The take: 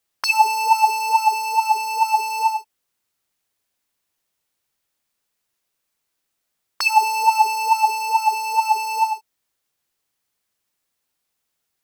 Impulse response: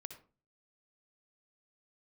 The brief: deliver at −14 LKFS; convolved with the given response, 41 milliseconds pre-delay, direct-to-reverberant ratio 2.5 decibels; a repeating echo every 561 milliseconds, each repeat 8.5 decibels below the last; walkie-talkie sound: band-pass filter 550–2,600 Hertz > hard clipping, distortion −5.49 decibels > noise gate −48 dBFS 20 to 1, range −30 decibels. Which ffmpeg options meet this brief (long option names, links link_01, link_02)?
-filter_complex "[0:a]aecho=1:1:561|1122|1683|2244:0.376|0.143|0.0543|0.0206,asplit=2[link_01][link_02];[1:a]atrim=start_sample=2205,adelay=41[link_03];[link_02][link_03]afir=irnorm=-1:irlink=0,volume=2dB[link_04];[link_01][link_04]amix=inputs=2:normalize=0,highpass=550,lowpass=2600,asoftclip=type=hard:threshold=-21.5dB,agate=range=-30dB:threshold=-48dB:ratio=20,volume=10dB"